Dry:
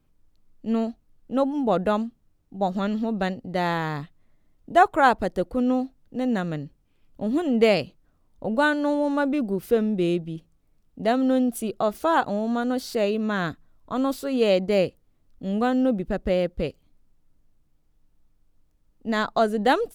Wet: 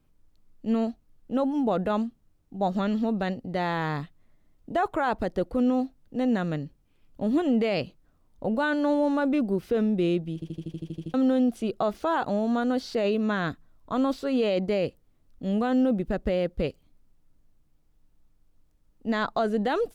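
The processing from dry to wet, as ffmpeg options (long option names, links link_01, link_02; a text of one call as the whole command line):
ffmpeg -i in.wav -filter_complex "[0:a]asplit=11[link_01][link_02][link_03][link_04][link_05][link_06][link_07][link_08][link_09][link_10][link_11];[link_01]atrim=end=10.422[link_12];[link_02]atrim=start=10.338:end=10.422[link_13];[link_03]atrim=start=10.338:end=10.422[link_14];[link_04]atrim=start=10.338:end=10.422[link_15];[link_05]atrim=start=10.338:end=10.422[link_16];[link_06]atrim=start=10.338:end=10.422[link_17];[link_07]atrim=start=10.338:end=10.422[link_18];[link_08]atrim=start=10.338:end=10.422[link_19];[link_09]atrim=start=10.338:end=10.422[link_20];[link_10]atrim=start=10.338:end=10.422[link_21];[link_11]atrim=start=11.138[link_22];[link_12][link_13]acrossfade=duration=0.004:curve1=hsin:curve2=hsin[link_23];[link_23][link_14]acrossfade=duration=0.004:curve1=hsin:curve2=hsin[link_24];[link_24][link_15]acrossfade=duration=0.004:curve1=hsin:curve2=hsin[link_25];[link_25][link_16]acrossfade=duration=0.004:curve1=hsin:curve2=hsin[link_26];[link_26][link_17]acrossfade=duration=0.004:curve1=hsin:curve2=hsin[link_27];[link_27][link_18]acrossfade=duration=0.004:curve1=hsin:curve2=hsin[link_28];[link_28][link_19]acrossfade=duration=0.004:curve1=hsin:curve2=hsin[link_29];[link_29][link_20]acrossfade=duration=0.004:curve1=hsin:curve2=hsin[link_30];[link_30][link_21]acrossfade=duration=0.004:curve1=hsin:curve2=hsin[link_31];[link_31][link_22]acrossfade=duration=0.004:curve1=hsin:curve2=hsin,alimiter=limit=-16dB:level=0:latency=1:release=13,acrossover=split=5700[link_32][link_33];[link_33]acompressor=threshold=-59dB:ratio=4:attack=1:release=60[link_34];[link_32][link_34]amix=inputs=2:normalize=0" out.wav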